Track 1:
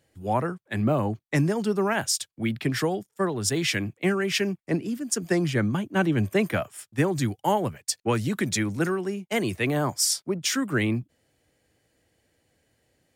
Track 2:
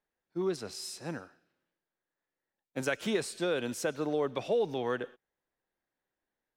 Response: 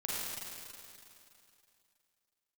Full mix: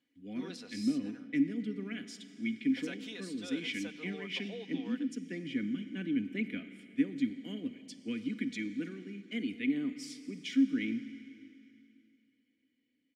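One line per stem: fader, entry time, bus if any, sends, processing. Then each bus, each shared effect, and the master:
-2.0 dB, 0.00 s, send -13.5 dB, vowel filter i
-6.0 dB, 0.00 s, no send, frequency weighting D; auto duck -13 dB, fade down 1.00 s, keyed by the first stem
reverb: on, RT60 2.7 s, pre-delay 36 ms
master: comb 4.1 ms, depth 50%

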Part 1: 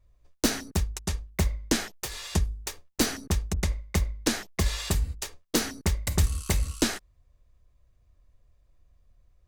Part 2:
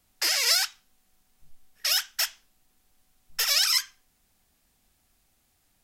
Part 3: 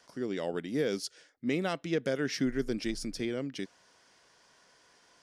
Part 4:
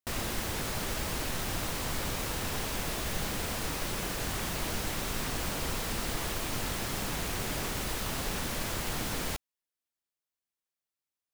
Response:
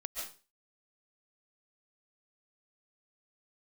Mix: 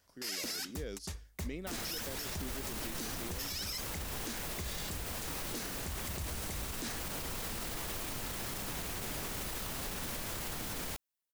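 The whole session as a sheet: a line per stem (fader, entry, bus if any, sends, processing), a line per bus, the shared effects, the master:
-9.5 dB, 0.00 s, no send, high-pass 64 Hz 12 dB/octave
-11.0 dB, 0.00 s, no send, none
-11.5 dB, 0.00 s, no send, none
-2.0 dB, 1.60 s, no send, peak limiter -28.5 dBFS, peak gain reduction 8 dB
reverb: none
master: treble shelf 9.3 kHz +6 dB; peak limiter -29.5 dBFS, peak gain reduction 12.5 dB

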